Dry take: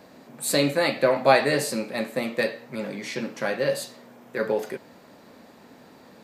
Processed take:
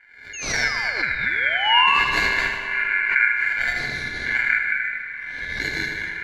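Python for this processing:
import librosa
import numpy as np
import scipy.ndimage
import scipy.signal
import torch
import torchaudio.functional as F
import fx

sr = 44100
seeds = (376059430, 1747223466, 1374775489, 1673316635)

p1 = fx.bit_reversed(x, sr, seeds[0], block=64)
p2 = fx.recorder_agc(p1, sr, target_db=-7.5, rise_db_per_s=8.1, max_gain_db=30)
p3 = scipy.signal.sosfilt(scipy.signal.butter(6, 12000.0, 'lowpass', fs=sr, output='sos'), p2)
p4 = fx.band_shelf(p3, sr, hz=990.0, db=-15.5, octaves=1.7)
p5 = fx.echo_pitch(p4, sr, ms=717, semitones=-2, count=3, db_per_echo=-6.0)
p6 = fx.spec_paint(p5, sr, seeds[1], shape='fall', start_s=0.33, length_s=1.67, low_hz=720.0, high_hz=4800.0, level_db=-24.0)
p7 = fx.filter_lfo_lowpass(p6, sr, shape='sine', hz=0.57, low_hz=440.0, high_hz=2100.0, q=2.0)
p8 = p7 + fx.echo_feedback(p7, sr, ms=78, feedback_pct=57, wet_db=-7.5, dry=0)
p9 = p8 * np.sin(2.0 * np.pi * 1900.0 * np.arange(len(p8)) / sr)
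p10 = fx.low_shelf(p9, sr, hz=120.0, db=8.0)
p11 = fx.rev_spring(p10, sr, rt60_s=3.4, pass_ms=(43, 57), chirp_ms=40, drr_db=9.0)
p12 = fx.pre_swell(p11, sr, db_per_s=65.0)
y = p12 * 10.0 ** (5.5 / 20.0)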